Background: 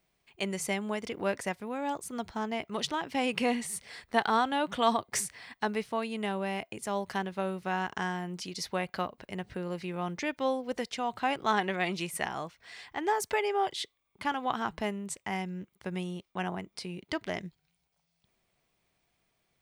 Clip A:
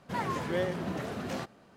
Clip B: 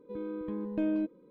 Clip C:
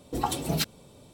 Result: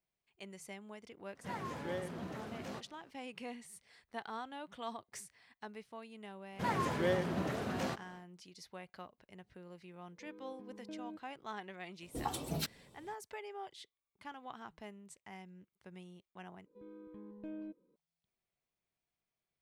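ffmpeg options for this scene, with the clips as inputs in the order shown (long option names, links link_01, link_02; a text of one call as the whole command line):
ffmpeg -i bed.wav -i cue0.wav -i cue1.wav -i cue2.wav -filter_complex "[1:a]asplit=2[link_01][link_02];[2:a]asplit=2[link_03][link_04];[0:a]volume=-17dB[link_05];[link_03]highpass=130[link_06];[link_05]asplit=2[link_07][link_08];[link_07]atrim=end=16.664[link_09];[link_04]atrim=end=1.3,asetpts=PTS-STARTPTS,volume=-15.5dB[link_10];[link_08]atrim=start=17.956[link_11];[link_01]atrim=end=1.76,asetpts=PTS-STARTPTS,volume=-9.5dB,afade=type=in:duration=0.004:curve=hsin,afade=type=out:start_time=1.756:duration=0.004:curve=hsin,adelay=1350[link_12];[link_02]atrim=end=1.76,asetpts=PTS-STARTPTS,volume=-1.5dB,afade=type=in:duration=0.1,afade=type=out:start_time=1.66:duration=0.1,adelay=286650S[link_13];[link_06]atrim=end=1.3,asetpts=PTS-STARTPTS,volume=-17dB,afade=type=in:duration=0.004:curve=hsin,afade=type=out:start_time=1.296:duration=0.004:curve=hsin,adelay=10110[link_14];[3:a]atrim=end=1.13,asetpts=PTS-STARTPTS,volume=-10dB,afade=type=in:duration=0.004:curve=hsin,afade=type=out:start_time=1.126:duration=0.004:curve=hsin,adelay=12020[link_15];[link_09][link_10]acrossfade=duration=0.004:curve1=hsin:curve2=hsin[link_16];[link_16][link_11]acrossfade=duration=0.004:curve1=hsin:curve2=hsin[link_17];[link_17][link_12][link_13][link_14][link_15]amix=inputs=5:normalize=0" out.wav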